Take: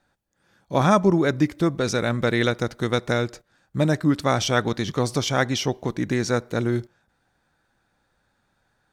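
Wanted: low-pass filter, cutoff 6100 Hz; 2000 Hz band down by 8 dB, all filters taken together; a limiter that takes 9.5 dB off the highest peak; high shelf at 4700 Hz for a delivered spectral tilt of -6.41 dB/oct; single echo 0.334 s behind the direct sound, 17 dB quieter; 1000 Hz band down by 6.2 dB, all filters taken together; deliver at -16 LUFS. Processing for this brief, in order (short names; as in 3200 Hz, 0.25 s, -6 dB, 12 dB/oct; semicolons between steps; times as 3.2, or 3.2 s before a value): LPF 6100 Hz; bell 1000 Hz -6 dB; bell 2000 Hz -7 dB; high shelf 4700 Hz -8 dB; limiter -17 dBFS; echo 0.334 s -17 dB; gain +12.5 dB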